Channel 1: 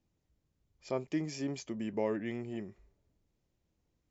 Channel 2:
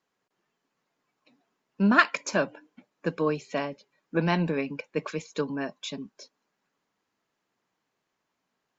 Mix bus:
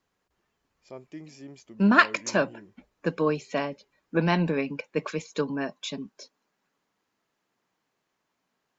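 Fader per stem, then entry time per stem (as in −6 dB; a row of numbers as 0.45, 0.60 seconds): −8.0, +1.5 decibels; 0.00, 0.00 seconds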